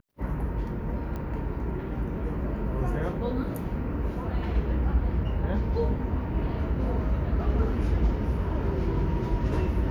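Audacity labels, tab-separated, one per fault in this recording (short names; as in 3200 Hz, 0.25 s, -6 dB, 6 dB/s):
1.160000	1.160000	pop -24 dBFS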